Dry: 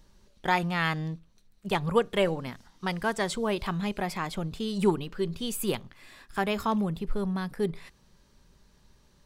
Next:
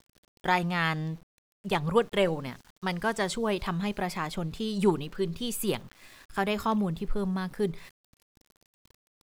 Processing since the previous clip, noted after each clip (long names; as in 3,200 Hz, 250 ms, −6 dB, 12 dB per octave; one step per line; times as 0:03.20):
centre clipping without the shift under −51 dBFS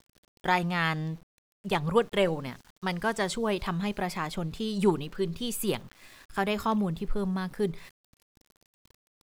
no processing that can be heard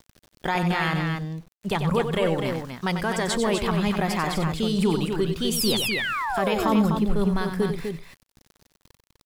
brickwall limiter −21 dBFS, peak gain reduction 10 dB
sound drawn into the spectrogram fall, 0:05.56–0:06.77, 240–5,900 Hz −35 dBFS
on a send: loudspeakers that aren't time-aligned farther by 32 metres −8 dB, 86 metres −6 dB
on the sum: level +6.5 dB